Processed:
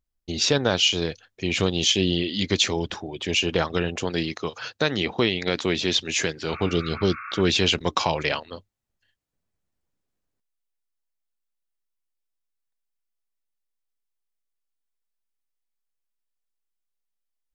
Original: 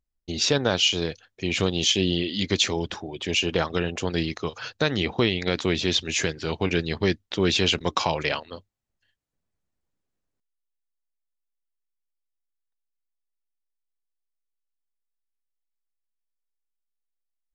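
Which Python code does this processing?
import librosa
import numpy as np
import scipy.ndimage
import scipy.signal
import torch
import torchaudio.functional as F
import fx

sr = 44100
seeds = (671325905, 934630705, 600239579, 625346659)

y = fx.highpass(x, sr, hz=150.0, slope=6, at=(4.04, 6.54))
y = fx.spec_repair(y, sr, seeds[0], start_s=6.54, length_s=0.85, low_hz=1100.0, high_hz=2700.0, source='both')
y = y * librosa.db_to_amplitude(1.0)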